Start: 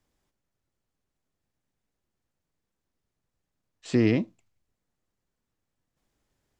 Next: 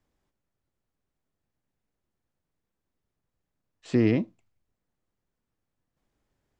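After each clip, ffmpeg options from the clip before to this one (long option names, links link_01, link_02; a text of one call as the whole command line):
ffmpeg -i in.wav -af "highshelf=frequency=3300:gain=-7.5" out.wav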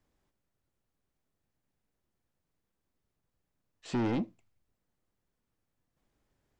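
ffmpeg -i in.wav -af "asoftclip=type=tanh:threshold=-26.5dB" out.wav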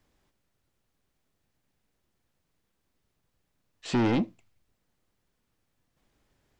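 ffmpeg -i in.wav -af "equalizer=frequency=3300:width_type=o:width=2.1:gain=3.5,volume=5.5dB" out.wav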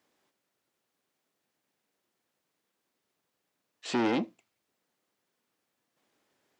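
ffmpeg -i in.wav -af "highpass=280" out.wav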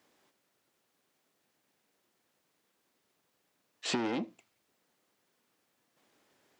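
ffmpeg -i in.wav -af "acompressor=threshold=-33dB:ratio=12,volume=4.5dB" out.wav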